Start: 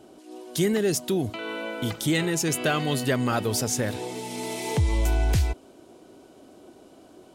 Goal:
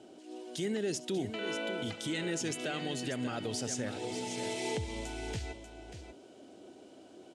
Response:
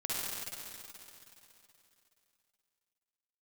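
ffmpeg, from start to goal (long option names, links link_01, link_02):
-af "alimiter=limit=-22dB:level=0:latency=1:release=246,highpass=110,equalizer=frequency=150:width_type=q:width=4:gain=-5,equalizer=frequency=1100:width_type=q:width=4:gain=-8,equalizer=frequency=3000:width_type=q:width=4:gain=3,lowpass=frequency=8800:width=0.5412,lowpass=frequency=8800:width=1.3066,aecho=1:1:68|589:0.112|0.335,volume=-3.5dB"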